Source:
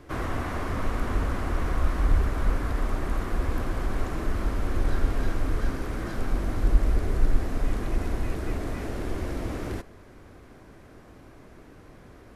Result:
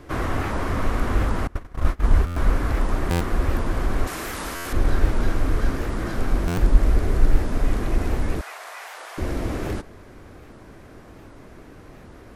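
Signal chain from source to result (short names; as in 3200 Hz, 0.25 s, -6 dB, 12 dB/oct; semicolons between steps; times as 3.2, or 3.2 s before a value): 1.47–2.31 gate -21 dBFS, range -26 dB; 4.07–4.73 tilt +3.5 dB/oct; 8.41–9.18 inverse Chebyshev high-pass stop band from 220 Hz, stop band 60 dB; stuck buffer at 2.26/3.1/4.55/6.47, samples 512, times 8; record warp 78 rpm, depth 250 cents; gain +5 dB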